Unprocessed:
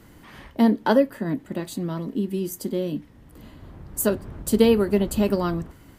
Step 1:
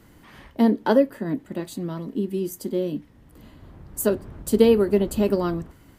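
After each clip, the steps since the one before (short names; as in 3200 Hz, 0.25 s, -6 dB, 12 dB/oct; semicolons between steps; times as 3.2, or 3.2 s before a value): dynamic EQ 390 Hz, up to +5 dB, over -30 dBFS, Q 1.1; gain -2.5 dB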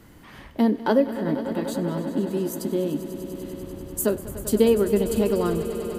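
in parallel at +0.5 dB: compressor, threshold -27 dBFS, peak gain reduction 15.5 dB; on the sum: swelling echo 98 ms, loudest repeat 5, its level -15.5 dB; gain -4 dB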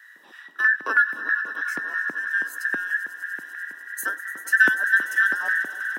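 band inversion scrambler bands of 2000 Hz; LFO high-pass square 3.1 Hz 300–1600 Hz; steep high-pass 150 Hz 48 dB/oct; gain -5.5 dB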